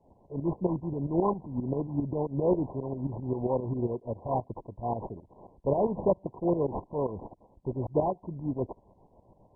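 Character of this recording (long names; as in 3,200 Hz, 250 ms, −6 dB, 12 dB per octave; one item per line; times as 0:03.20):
aliases and images of a low sample rate 3,000 Hz, jitter 20%
tremolo saw up 7.5 Hz, depth 75%
MP2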